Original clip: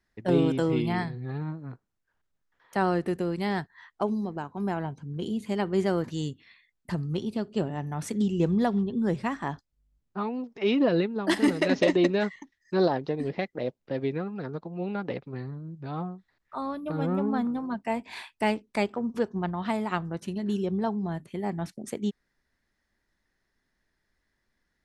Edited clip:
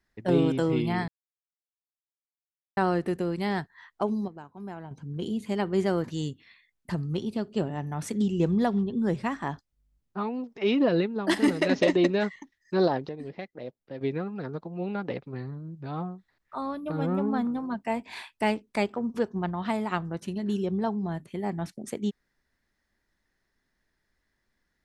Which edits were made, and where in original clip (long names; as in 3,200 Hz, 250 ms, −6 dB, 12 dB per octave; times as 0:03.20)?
0:01.08–0:02.77: silence
0:04.28–0:04.91: clip gain −9.5 dB
0:13.09–0:14.01: clip gain −8 dB